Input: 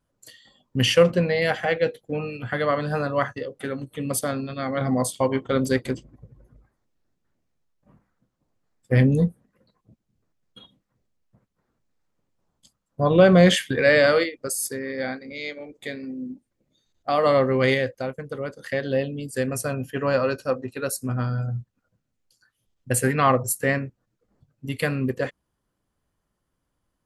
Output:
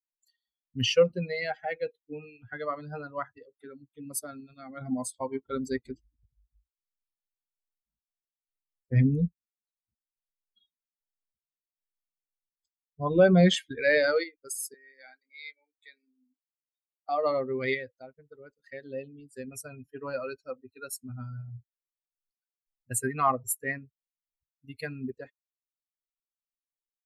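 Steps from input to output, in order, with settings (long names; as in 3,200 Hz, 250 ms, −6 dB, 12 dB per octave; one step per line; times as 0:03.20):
spectral dynamics exaggerated over time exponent 2
0:14.74–0:17.09: high-pass filter 1,000 Hz 12 dB per octave
level −2.5 dB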